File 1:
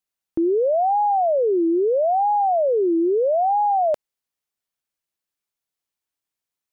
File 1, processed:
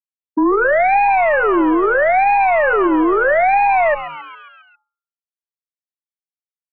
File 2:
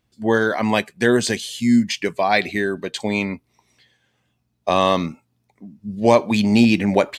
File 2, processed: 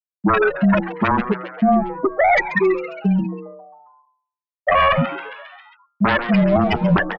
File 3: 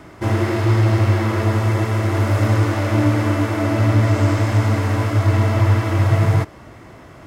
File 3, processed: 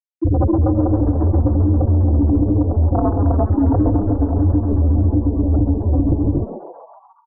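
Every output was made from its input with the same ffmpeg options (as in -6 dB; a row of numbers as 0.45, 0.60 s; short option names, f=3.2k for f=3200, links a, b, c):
-filter_complex "[0:a]lowpass=6k,afftfilt=real='re*gte(hypot(re,im),0.708)':imag='im*gte(hypot(re,im),0.708)':win_size=1024:overlap=0.75,aeval=exprs='0.708*(cos(1*acos(clip(val(0)/0.708,-1,1)))-cos(1*PI/2))+0.0112*(cos(3*acos(clip(val(0)/0.708,-1,1)))-cos(3*PI/2))+0.02*(cos(4*acos(clip(val(0)/0.708,-1,1)))-cos(4*PI/2))+0.251*(cos(7*acos(clip(val(0)/0.708,-1,1)))-cos(7*PI/2))+0.00501*(cos(8*acos(clip(val(0)/0.708,-1,1)))-cos(8*PI/2))':c=same,equalizer=f=490:t=o:w=0.51:g=-4,afreqshift=-19,bandreject=f=480:w=12,bandreject=f=183.3:t=h:w=4,bandreject=f=366.6:t=h:w=4,bandreject=f=549.9:t=h:w=4,acompressor=threshold=-22dB:ratio=8,equalizer=f=1.5k:t=o:w=0.99:g=7,asplit=7[a][b][c][d][e][f][g];[b]adelay=135,afreqshift=140,volume=-16dB[h];[c]adelay=270,afreqshift=280,volume=-20.4dB[i];[d]adelay=405,afreqshift=420,volume=-24.9dB[j];[e]adelay=540,afreqshift=560,volume=-29.3dB[k];[f]adelay=675,afreqshift=700,volume=-33.7dB[l];[g]adelay=810,afreqshift=840,volume=-38.2dB[m];[a][h][i][j][k][l][m]amix=inputs=7:normalize=0,alimiter=level_in=17.5dB:limit=-1dB:release=50:level=0:latency=1,volume=-6.5dB"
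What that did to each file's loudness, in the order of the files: +5.5, +1.0, +0.5 LU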